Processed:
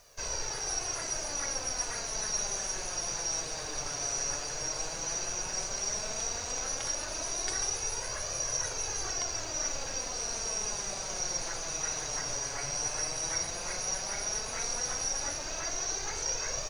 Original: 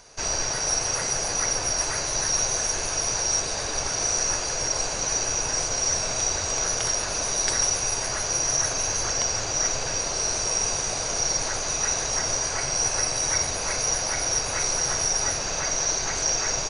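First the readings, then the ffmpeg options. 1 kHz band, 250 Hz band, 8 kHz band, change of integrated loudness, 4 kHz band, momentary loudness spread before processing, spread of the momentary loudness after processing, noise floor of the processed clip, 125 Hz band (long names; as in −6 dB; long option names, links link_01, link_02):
−9.0 dB, −8.5 dB, −9.0 dB, −9.0 dB, −9.0 dB, 3 LU, 3 LU, −38 dBFS, −10.5 dB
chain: -af "acrusher=bits=8:mix=0:aa=0.000001,flanger=delay=1.6:depth=5.6:regen=39:speed=0.12:shape=triangular,volume=-5dB"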